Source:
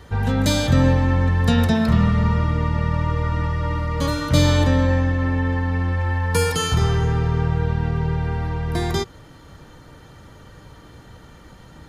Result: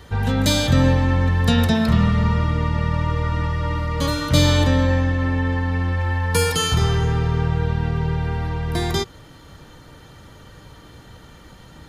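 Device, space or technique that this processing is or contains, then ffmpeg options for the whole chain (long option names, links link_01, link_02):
presence and air boost: -af "equalizer=frequency=3400:width_type=o:width=1.1:gain=3.5,highshelf=frequency=9100:gain=5"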